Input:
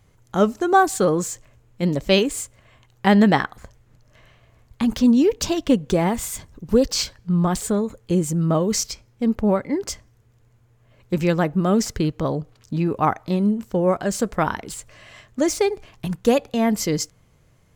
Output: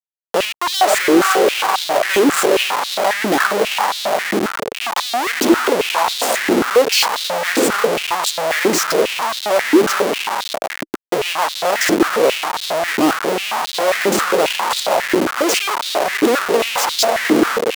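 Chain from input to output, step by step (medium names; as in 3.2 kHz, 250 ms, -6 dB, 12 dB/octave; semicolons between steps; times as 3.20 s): echo that smears into a reverb 464 ms, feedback 57%, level -10 dB; Schmitt trigger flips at -30 dBFS; step-sequenced high-pass 7.4 Hz 320–3800 Hz; trim +4.5 dB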